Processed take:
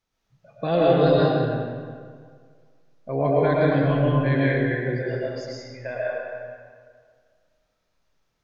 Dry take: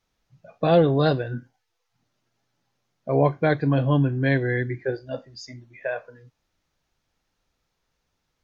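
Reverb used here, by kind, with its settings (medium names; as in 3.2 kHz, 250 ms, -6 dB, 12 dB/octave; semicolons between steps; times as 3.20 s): algorithmic reverb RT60 1.9 s, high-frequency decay 0.7×, pre-delay 75 ms, DRR -6 dB; trim -5.5 dB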